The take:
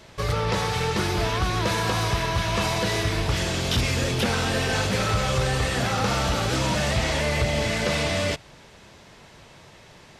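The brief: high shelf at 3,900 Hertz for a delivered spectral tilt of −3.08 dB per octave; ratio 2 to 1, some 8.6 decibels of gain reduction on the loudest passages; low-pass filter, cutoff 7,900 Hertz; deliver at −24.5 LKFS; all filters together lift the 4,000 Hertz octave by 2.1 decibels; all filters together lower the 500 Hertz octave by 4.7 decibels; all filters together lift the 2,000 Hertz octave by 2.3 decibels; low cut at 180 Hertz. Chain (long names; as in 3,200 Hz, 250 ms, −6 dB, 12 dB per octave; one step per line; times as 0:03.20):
high-pass filter 180 Hz
low-pass filter 7,900 Hz
parametric band 500 Hz −6 dB
parametric band 2,000 Hz +3 dB
high-shelf EQ 3,900 Hz −3.5 dB
parametric band 4,000 Hz +4 dB
downward compressor 2 to 1, threshold −38 dBFS
level +8.5 dB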